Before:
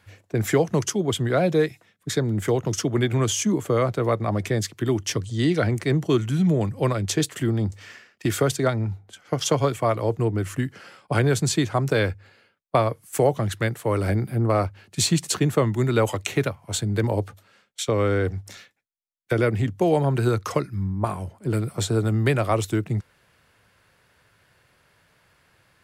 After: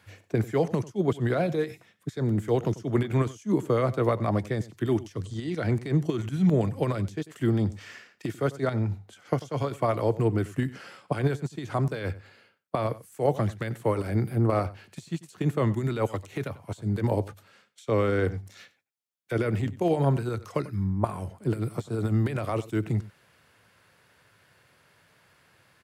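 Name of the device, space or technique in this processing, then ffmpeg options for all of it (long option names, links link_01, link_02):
de-esser from a sidechain: -filter_complex "[0:a]asplit=2[link_01][link_02];[link_02]highpass=frequency=4200:width=0.5412,highpass=frequency=4200:width=1.3066,apad=whole_len=1139287[link_03];[link_01][link_03]sidechaincompress=threshold=-48dB:ratio=20:attack=0.84:release=53,highpass=86,asplit=2[link_04][link_05];[link_05]adelay=93.29,volume=-18dB,highshelf=frequency=4000:gain=-2.1[link_06];[link_04][link_06]amix=inputs=2:normalize=0"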